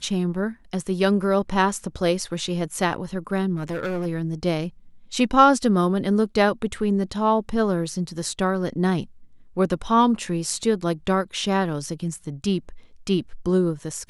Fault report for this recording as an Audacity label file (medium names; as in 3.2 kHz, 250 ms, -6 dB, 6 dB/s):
3.550000	4.070000	clipped -23 dBFS